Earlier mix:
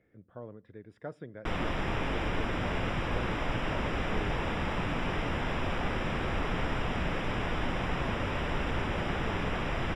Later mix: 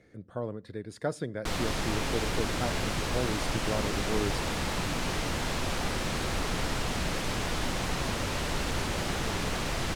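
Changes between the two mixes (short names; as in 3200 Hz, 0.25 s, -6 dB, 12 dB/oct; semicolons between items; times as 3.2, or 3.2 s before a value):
speech +9.5 dB; master: remove polynomial smoothing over 25 samples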